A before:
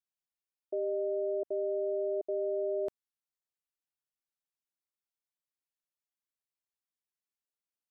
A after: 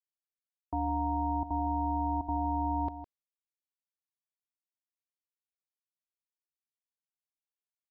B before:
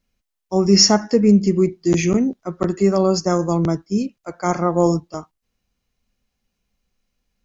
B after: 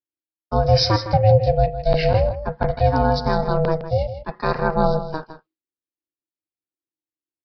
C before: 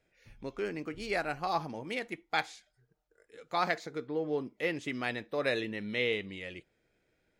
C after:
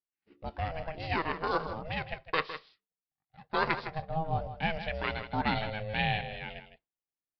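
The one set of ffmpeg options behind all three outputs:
-filter_complex "[0:a]agate=range=-33dB:threshold=-46dB:ratio=3:detection=peak,asplit=2[a][b];[b]alimiter=limit=-13dB:level=0:latency=1:release=310,volume=-0.5dB[c];[a][c]amix=inputs=2:normalize=0,aeval=exprs='val(0)*sin(2*PI*320*n/s)':c=same,acrusher=samples=4:mix=1:aa=0.000001,asplit=2[d][e];[e]aecho=0:1:159:0.266[f];[d][f]amix=inputs=2:normalize=0,aresample=11025,aresample=44100,volume=-1.5dB"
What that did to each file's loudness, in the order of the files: +1.5, -2.0, +1.0 LU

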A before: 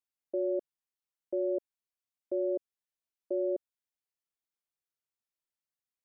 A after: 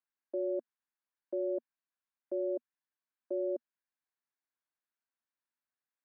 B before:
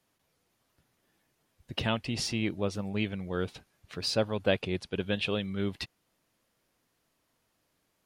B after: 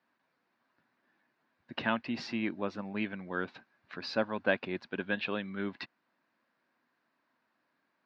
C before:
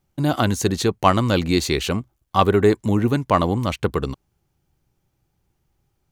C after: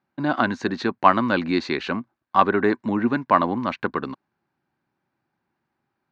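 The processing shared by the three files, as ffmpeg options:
-af "highpass=240,equalizer=f=240:t=q:w=4:g=6,equalizer=f=450:t=q:w=4:g=-6,equalizer=f=1k:t=q:w=4:g=5,equalizer=f=1.6k:t=q:w=4:g=8,equalizer=f=3.2k:t=q:w=4:g=-8,lowpass=f=4k:w=0.5412,lowpass=f=4k:w=1.3066,volume=-1.5dB"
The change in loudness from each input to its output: -3.0, -3.0, -2.0 LU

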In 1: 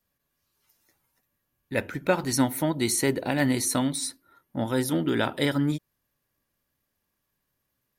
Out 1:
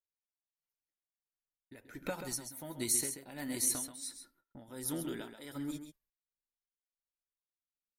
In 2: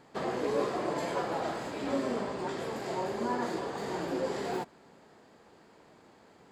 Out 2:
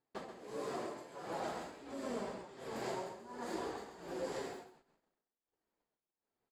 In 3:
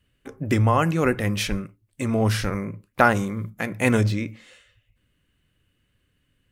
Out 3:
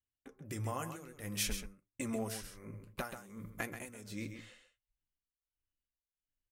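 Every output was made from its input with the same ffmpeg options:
-filter_complex "[0:a]agate=range=-30dB:threshold=-53dB:ratio=16:detection=peak,asubboost=boost=5:cutoff=51,acrossover=split=6400[a][b];[a]acompressor=threshold=-36dB:ratio=6[c];[c][b]amix=inputs=2:normalize=0,tremolo=f=1.4:d=0.86,flanger=delay=2.3:depth=6.4:regen=-48:speed=0.54:shape=triangular,aecho=1:1:133:0.355,volume=3.5dB"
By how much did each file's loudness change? -10.5, -10.0, -18.5 LU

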